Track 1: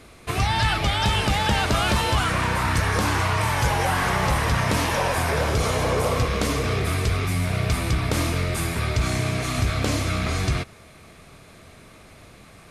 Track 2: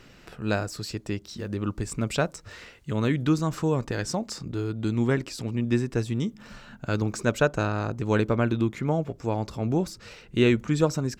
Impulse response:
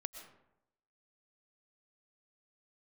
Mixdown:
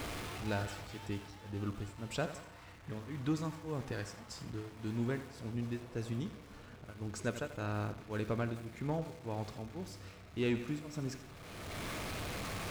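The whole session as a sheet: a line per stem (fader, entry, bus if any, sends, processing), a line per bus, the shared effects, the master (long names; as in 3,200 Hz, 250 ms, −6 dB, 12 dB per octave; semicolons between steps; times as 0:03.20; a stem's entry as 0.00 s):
−11.0 dB, 0.00 s, no send, no echo send, sign of each sample alone; high-shelf EQ 6,800 Hz −8 dB; automatic ducking −13 dB, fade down 1.45 s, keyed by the second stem
−3.5 dB, 0.00 s, no send, echo send −13 dB, tremolo along a rectified sine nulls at 1.8 Hz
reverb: not used
echo: repeating echo 86 ms, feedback 46%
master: tuned comb filter 99 Hz, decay 1.2 s, harmonics odd, mix 70%; leveller curve on the samples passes 1; one half of a high-frequency compander decoder only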